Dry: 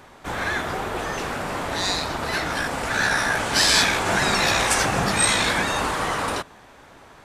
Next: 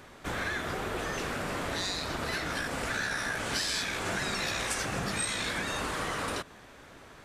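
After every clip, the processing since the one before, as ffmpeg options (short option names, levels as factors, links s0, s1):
-af "equalizer=f=860:w=2:g=-6,acompressor=threshold=0.0398:ratio=5,volume=0.794"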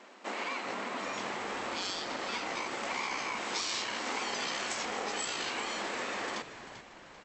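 -filter_complex "[0:a]aeval=exprs='val(0)*sin(2*PI*620*n/s)':c=same,afftfilt=real='re*between(b*sr/4096,190,8100)':imag='im*between(b*sr/4096,190,8100)':win_size=4096:overlap=0.75,asplit=5[s0][s1][s2][s3][s4];[s1]adelay=391,afreqshift=-94,volume=0.251[s5];[s2]adelay=782,afreqshift=-188,volume=0.1[s6];[s3]adelay=1173,afreqshift=-282,volume=0.0403[s7];[s4]adelay=1564,afreqshift=-376,volume=0.016[s8];[s0][s5][s6][s7][s8]amix=inputs=5:normalize=0"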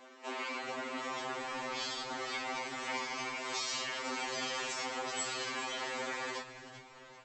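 -af "afftfilt=real='re*2.45*eq(mod(b,6),0)':imag='im*2.45*eq(mod(b,6),0)':win_size=2048:overlap=0.75"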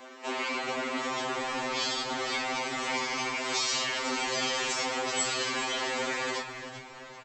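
-filter_complex "[0:a]asplit=2[s0][s1];[s1]adelay=270,highpass=300,lowpass=3400,asoftclip=type=hard:threshold=0.0211,volume=0.251[s2];[s0][s2]amix=inputs=2:normalize=0,acrossover=split=590|2200[s3][s4][s5];[s4]asoftclip=type=tanh:threshold=0.01[s6];[s3][s6][s5]amix=inputs=3:normalize=0,volume=2.51"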